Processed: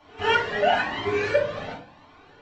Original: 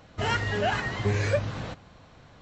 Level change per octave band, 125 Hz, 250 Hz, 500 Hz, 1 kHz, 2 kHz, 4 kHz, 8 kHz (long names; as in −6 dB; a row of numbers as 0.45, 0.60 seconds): −11.0 dB, −1.5 dB, +6.0 dB, +6.5 dB, +4.5 dB, +4.5 dB, can't be measured